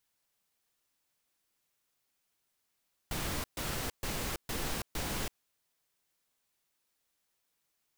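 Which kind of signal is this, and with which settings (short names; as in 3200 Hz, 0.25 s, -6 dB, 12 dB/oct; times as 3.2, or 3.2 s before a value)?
noise bursts pink, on 0.33 s, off 0.13 s, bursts 5, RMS -35.5 dBFS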